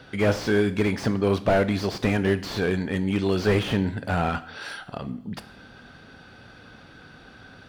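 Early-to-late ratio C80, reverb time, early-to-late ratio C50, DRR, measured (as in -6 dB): 18.5 dB, 0.65 s, 16.0 dB, 11.5 dB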